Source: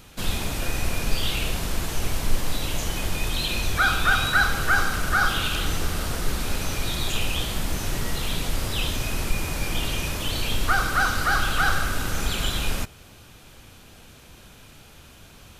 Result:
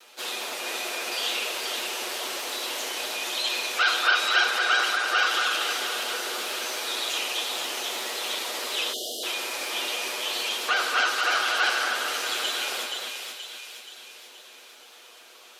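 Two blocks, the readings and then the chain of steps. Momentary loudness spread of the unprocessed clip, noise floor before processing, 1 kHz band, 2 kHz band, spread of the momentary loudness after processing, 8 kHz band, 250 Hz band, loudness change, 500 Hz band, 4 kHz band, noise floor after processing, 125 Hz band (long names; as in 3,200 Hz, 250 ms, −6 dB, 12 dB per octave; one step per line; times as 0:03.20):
8 LU, −48 dBFS, −1.0 dB, 0.0 dB, 11 LU, 0.0 dB, −12.0 dB, −0.5 dB, −0.5 dB, +3.0 dB, −50 dBFS, below −40 dB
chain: lower of the sound and its delayed copy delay 8.2 ms
high-pass filter 400 Hz 24 dB per octave
high-shelf EQ 2,000 Hz −3.5 dB
echo with a time of its own for lows and highs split 2,000 Hz, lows 238 ms, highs 477 ms, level −4.5 dB
time-frequency box erased 0:08.93–0:09.24, 770–2,800 Hz
parametric band 4,000 Hz +5 dB 1.6 octaves
gate on every frequency bin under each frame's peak −30 dB strong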